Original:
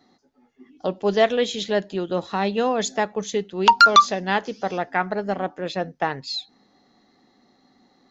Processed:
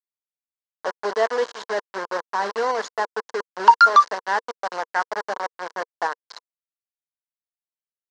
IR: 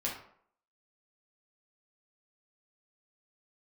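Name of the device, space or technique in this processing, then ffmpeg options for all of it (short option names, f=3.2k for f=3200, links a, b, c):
hand-held game console: -af "acrusher=bits=3:mix=0:aa=0.000001,highpass=450,equalizer=f=470:t=q:w=4:g=6,equalizer=f=1k:t=q:w=4:g=10,equalizer=f=1.6k:t=q:w=4:g=7,equalizer=f=2.5k:t=q:w=4:g=-10,equalizer=f=3.5k:t=q:w=4:g=-8,lowpass=f=5.6k:w=0.5412,lowpass=f=5.6k:w=1.3066,volume=-4.5dB"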